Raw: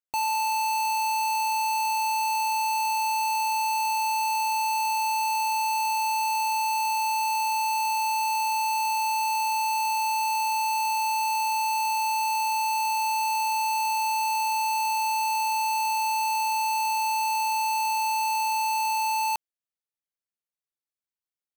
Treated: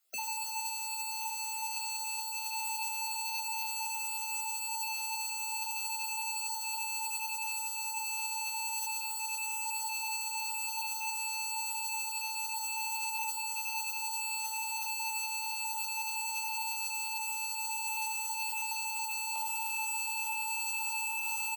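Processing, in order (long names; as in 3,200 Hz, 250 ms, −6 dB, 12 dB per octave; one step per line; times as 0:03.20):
time-frequency cells dropped at random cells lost 21%
high-shelf EQ 4,100 Hz +9.5 dB
comb filter 1.5 ms, depth 35%
feedback delay with all-pass diffusion 1,866 ms, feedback 68%, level −11.5 dB
convolution reverb RT60 0.70 s, pre-delay 4 ms, DRR 2 dB
compressor whose output falls as the input rises −30 dBFS, ratio −0.5
brickwall limiter −30.5 dBFS, peak gain reduction 16 dB
Butterworth high-pass 200 Hz 96 dB per octave
low-shelf EQ 410 Hz +8 dB
level +3 dB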